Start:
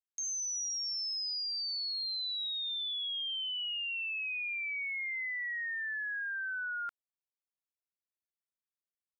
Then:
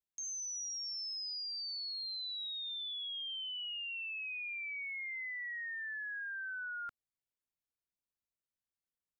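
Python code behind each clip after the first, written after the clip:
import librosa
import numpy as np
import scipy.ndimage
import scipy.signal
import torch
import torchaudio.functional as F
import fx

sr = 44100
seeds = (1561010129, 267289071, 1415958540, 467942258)

y = fx.low_shelf(x, sr, hz=290.0, db=11.5)
y = F.gain(torch.from_numpy(y), -5.0).numpy()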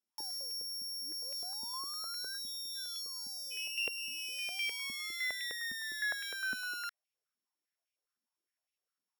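y = np.r_[np.sort(x[:len(x) // 8 * 8].reshape(-1, 8), axis=1).ravel(), x[len(x) // 8 * 8:]]
y = fx.spec_erase(y, sr, start_s=0.58, length_s=2.93, low_hz=1600.0, high_hz=3400.0)
y = fx.filter_held_highpass(y, sr, hz=9.8, low_hz=240.0, high_hz=2500.0)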